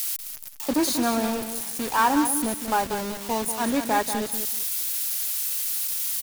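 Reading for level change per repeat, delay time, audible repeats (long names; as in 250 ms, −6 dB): −13.5 dB, 189 ms, 2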